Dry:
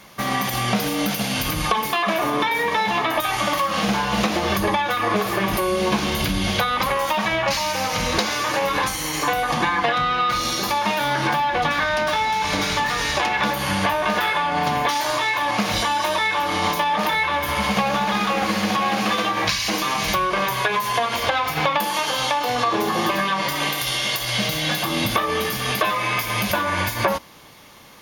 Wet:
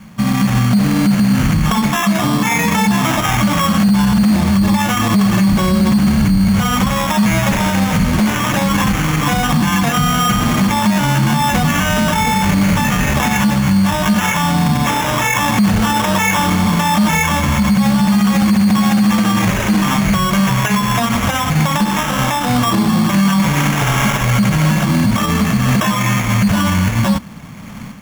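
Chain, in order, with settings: level rider; resonant low shelf 290 Hz +11 dB, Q 3; sample-and-hold 10×; peak limiter -6.5 dBFS, peak gain reduction 16 dB

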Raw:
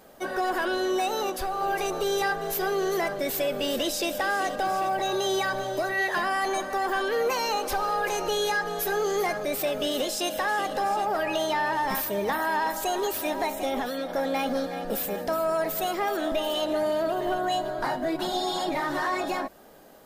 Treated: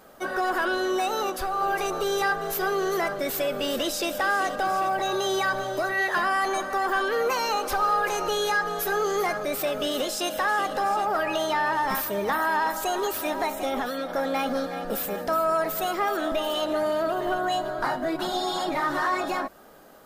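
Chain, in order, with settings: peaking EQ 1.3 kHz +7 dB 0.49 oct

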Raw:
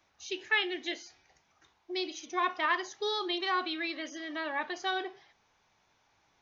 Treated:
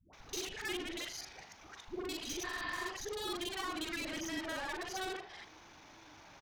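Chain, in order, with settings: time reversed locally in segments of 40 ms; compression 4:1, threshold -46 dBFS, peak gain reduction 18.5 dB; valve stage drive 54 dB, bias 0.6; phase dispersion highs, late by 131 ms, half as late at 460 Hz; spectral replace 2.47–2.81 s, 550–5100 Hz after; echo from a far wall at 300 m, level -22 dB; trim +16.5 dB

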